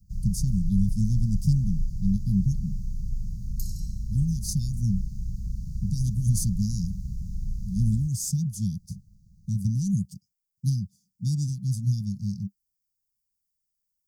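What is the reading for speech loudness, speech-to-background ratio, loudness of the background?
-28.0 LUFS, 7.5 dB, -35.5 LUFS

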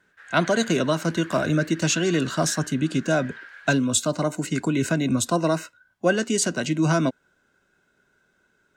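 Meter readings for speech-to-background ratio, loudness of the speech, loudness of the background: 18.0 dB, -23.5 LUFS, -41.5 LUFS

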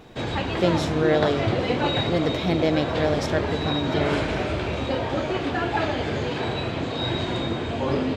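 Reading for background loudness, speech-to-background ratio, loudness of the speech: -26.0 LUFS, 0.5 dB, -25.5 LUFS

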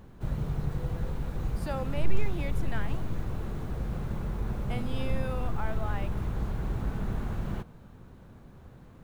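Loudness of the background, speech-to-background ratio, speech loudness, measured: -34.5 LUFS, -5.0 dB, -39.5 LUFS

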